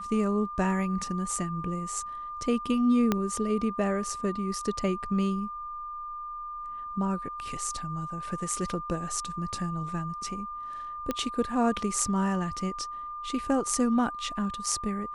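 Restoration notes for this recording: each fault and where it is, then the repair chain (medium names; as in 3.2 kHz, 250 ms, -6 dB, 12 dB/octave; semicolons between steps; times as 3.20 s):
whine 1.2 kHz -35 dBFS
3.12 s: pop -11 dBFS
11.11 s: pop -15 dBFS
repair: de-click; band-stop 1.2 kHz, Q 30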